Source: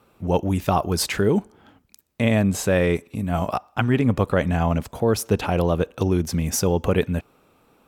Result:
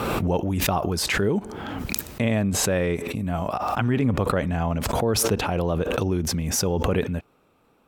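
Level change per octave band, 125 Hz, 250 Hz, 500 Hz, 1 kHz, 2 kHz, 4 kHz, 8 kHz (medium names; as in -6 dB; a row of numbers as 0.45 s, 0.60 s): -2.5 dB, -2.5 dB, -2.5 dB, -1.0 dB, -0.5 dB, +2.5 dB, +3.0 dB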